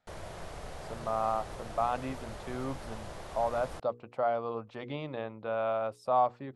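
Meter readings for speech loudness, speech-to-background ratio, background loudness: -33.5 LUFS, 11.0 dB, -44.5 LUFS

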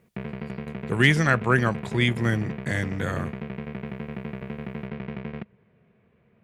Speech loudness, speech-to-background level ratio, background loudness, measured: -24.0 LUFS, 11.5 dB, -35.5 LUFS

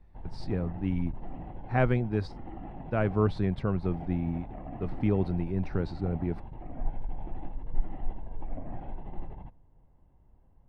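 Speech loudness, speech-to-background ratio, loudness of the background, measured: -31.0 LUFS, 12.5 dB, -43.5 LUFS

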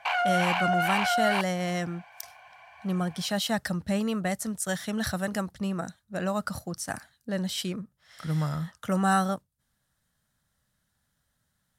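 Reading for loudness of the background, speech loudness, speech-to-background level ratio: -26.0 LUFS, -30.0 LUFS, -4.0 dB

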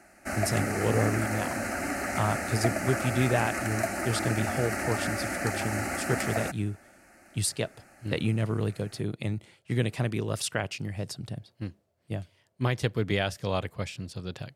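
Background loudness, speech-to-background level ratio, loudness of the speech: -31.0 LUFS, -0.5 dB, -31.5 LUFS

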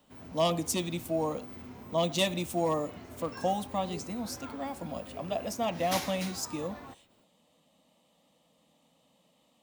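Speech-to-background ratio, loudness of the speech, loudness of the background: 10.5 dB, -33.0 LUFS, -43.5 LUFS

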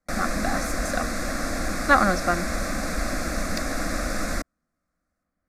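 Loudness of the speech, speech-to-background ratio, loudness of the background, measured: -25.0 LUFS, 3.5 dB, -28.5 LUFS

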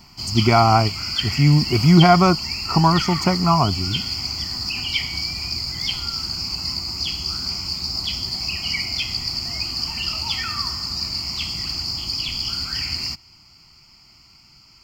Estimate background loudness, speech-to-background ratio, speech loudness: -23.5 LUFS, 6.0 dB, -17.5 LUFS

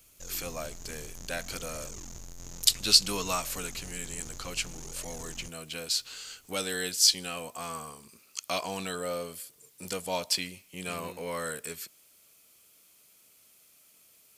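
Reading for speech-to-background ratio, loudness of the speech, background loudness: 14.0 dB, -30.5 LUFS, -44.5 LUFS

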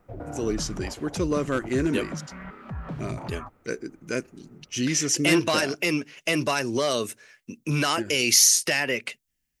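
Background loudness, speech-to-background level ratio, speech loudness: -37.5 LUFS, 14.0 dB, -23.5 LUFS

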